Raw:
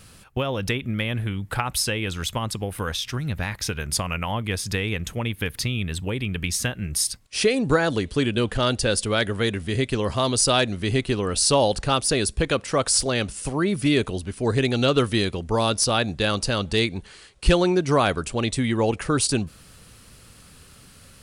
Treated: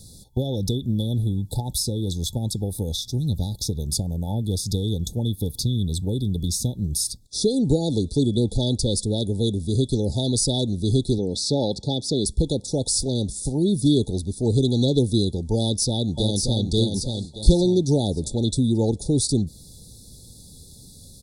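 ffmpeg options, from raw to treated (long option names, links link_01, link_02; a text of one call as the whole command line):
ffmpeg -i in.wav -filter_complex "[0:a]asettb=1/sr,asplit=3[link_01][link_02][link_03];[link_01]atrim=end=11.184[link_04];[link_02]atrim=start=11.18:end=12.26,asetpts=PTS-STARTPTS,afade=type=in:duration=0.004:curve=qsin,afade=type=out:start_time=1.076:duration=0.004:curve=qsin,highpass=130,lowpass=5200[link_05];[link_03]atrim=start=12.256[link_06];[link_04][link_05]acrossfade=duration=0.004:curve1=hsin:curve2=qsin[link_07];[link_07][link_06]acrossfade=duration=0.004:curve1=qsin:curve2=hsin,asplit=2[link_08][link_09];[link_09]afade=type=in:start_time=15.59:duration=0.01,afade=type=out:start_time=16.67:duration=0.01,aecho=0:1:580|1160|1740|2320:0.562341|0.196819|0.0688868|0.0241104[link_10];[link_08][link_10]amix=inputs=2:normalize=0,afftfilt=real='re*(1-between(b*sr/4096,900,3400))':imag='im*(1-between(b*sr/4096,900,3400))':win_size=4096:overlap=0.75,equalizer=frequency=740:width_type=o:width=1.2:gain=-12,acrossover=split=490[link_11][link_12];[link_12]acompressor=threshold=-37dB:ratio=1.5[link_13];[link_11][link_13]amix=inputs=2:normalize=0,volume=4.5dB" out.wav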